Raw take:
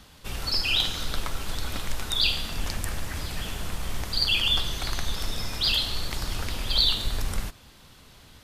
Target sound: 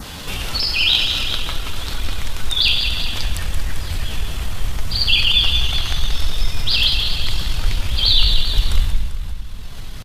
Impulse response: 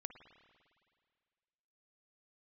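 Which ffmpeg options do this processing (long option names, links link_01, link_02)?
-filter_complex "[0:a]asplit=2[link_01][link_02];[link_02]asubboost=boost=7.5:cutoff=130[link_03];[1:a]atrim=start_sample=2205,adelay=149[link_04];[link_03][link_04]afir=irnorm=-1:irlink=0,volume=-1.5dB[link_05];[link_01][link_05]amix=inputs=2:normalize=0,atempo=0.84,aecho=1:1:393:0.251,acompressor=mode=upward:threshold=-19dB:ratio=2.5,adynamicequalizer=threshold=0.00891:dfrequency=3100:dqfactor=1.4:tfrequency=3100:tqfactor=1.4:attack=5:release=100:ratio=0.375:range=3.5:mode=boostabove:tftype=bell,volume=2dB"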